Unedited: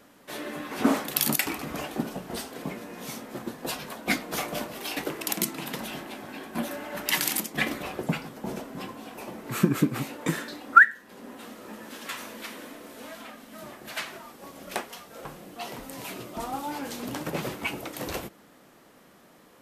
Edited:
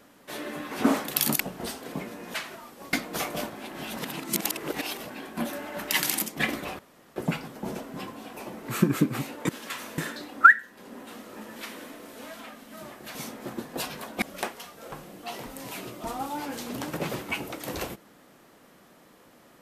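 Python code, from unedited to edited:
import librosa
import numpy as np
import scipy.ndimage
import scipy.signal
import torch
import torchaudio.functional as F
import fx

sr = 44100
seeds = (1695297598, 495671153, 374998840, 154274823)

y = fx.edit(x, sr, fx.cut(start_s=1.4, length_s=0.7),
    fx.swap(start_s=3.04, length_s=1.07, other_s=13.96, other_length_s=0.59),
    fx.reverse_span(start_s=4.68, length_s=1.6),
    fx.insert_room_tone(at_s=7.97, length_s=0.37),
    fx.move(start_s=11.88, length_s=0.49, to_s=10.3), tone=tone)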